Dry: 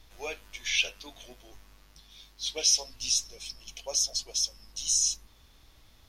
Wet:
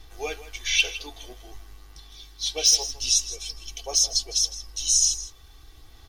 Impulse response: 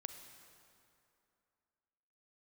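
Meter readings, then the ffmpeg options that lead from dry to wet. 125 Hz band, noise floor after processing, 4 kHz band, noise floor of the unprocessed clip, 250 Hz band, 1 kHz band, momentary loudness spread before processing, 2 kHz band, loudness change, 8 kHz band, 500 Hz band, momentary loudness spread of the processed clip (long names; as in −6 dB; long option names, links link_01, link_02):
can't be measured, −50 dBFS, +5.5 dB, −59 dBFS, +5.5 dB, +7.0 dB, 17 LU, +5.0 dB, +5.5 dB, +5.5 dB, +5.0 dB, 16 LU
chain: -af "aphaser=in_gain=1:out_gain=1:delay=2.4:decay=0.23:speed=0.5:type=sinusoidal,asoftclip=type=hard:threshold=-15.5dB,equalizer=frequency=2400:width=4:gain=-3,aecho=1:1:2.6:0.64,aecho=1:1:161:0.178,volume=4dB"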